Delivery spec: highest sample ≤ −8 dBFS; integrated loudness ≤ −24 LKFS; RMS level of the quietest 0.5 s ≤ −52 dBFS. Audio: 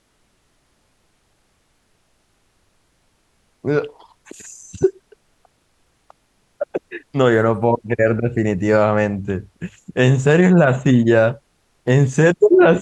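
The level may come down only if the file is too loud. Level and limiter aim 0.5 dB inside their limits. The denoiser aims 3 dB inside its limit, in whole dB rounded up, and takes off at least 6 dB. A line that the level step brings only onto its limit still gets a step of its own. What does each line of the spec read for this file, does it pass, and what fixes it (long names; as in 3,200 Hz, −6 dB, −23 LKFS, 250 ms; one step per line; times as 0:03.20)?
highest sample −3.5 dBFS: out of spec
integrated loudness −17.0 LKFS: out of spec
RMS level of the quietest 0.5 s −63 dBFS: in spec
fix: level −7.5 dB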